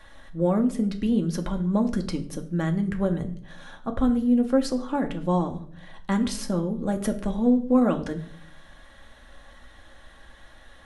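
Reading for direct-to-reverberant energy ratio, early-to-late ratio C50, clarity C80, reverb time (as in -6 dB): 3.5 dB, 14.0 dB, 18.0 dB, 0.55 s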